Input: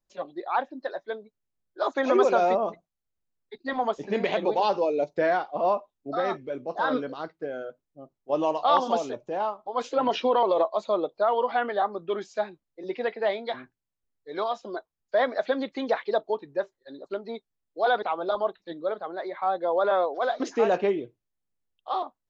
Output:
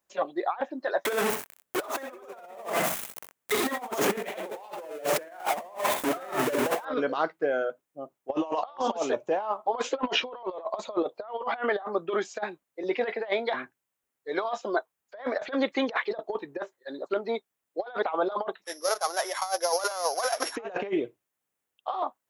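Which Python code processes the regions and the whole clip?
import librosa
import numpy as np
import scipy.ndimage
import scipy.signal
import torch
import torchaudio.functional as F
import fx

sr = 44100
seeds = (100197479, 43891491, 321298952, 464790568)

y = fx.chain(x, sr, fx.zero_step(step_db=-27.5),
    fx.echo_multitap(ms=(63, 85), db=(-6.0, -12.5)), at=(1.05, 6.85))
y = fx.chain(y, sr, fx.sample_sort(block=8),
    fx.highpass(hz=730.0, slope=12),
    fx.resample_bad(factor=2, down='none', up='filtered'), at=(18.64, 20.56))
y = fx.highpass(y, sr, hz=680.0, slope=6)
y = fx.peak_eq(y, sr, hz=4500.0, db=-8.5, octaves=1.0)
y = fx.over_compress(y, sr, threshold_db=-34.0, ratio=-0.5)
y = y * librosa.db_to_amplitude(5.5)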